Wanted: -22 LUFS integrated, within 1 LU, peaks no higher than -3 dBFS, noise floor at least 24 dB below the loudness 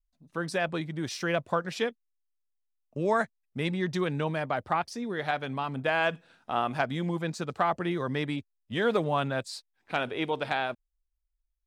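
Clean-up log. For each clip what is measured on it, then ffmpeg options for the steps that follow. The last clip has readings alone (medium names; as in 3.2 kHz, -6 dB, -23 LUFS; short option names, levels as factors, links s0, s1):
loudness -30.5 LUFS; peak level -13.5 dBFS; loudness target -22.0 LUFS
-> -af "volume=2.66"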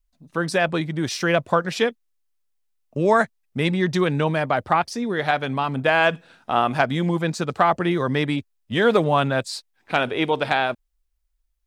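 loudness -22.0 LUFS; peak level -5.0 dBFS; noise floor -71 dBFS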